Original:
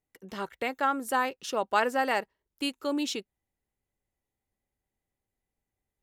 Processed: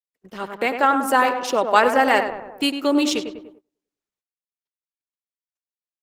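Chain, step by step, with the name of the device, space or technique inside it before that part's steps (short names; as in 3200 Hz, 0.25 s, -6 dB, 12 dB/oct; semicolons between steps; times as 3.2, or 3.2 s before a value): tape echo 0.1 s, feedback 60%, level -6 dB, low-pass 1700 Hz; video call (HPF 170 Hz 12 dB/oct; AGC gain up to 8.5 dB; gate -45 dBFS, range -27 dB; gain +2 dB; Opus 16 kbps 48000 Hz)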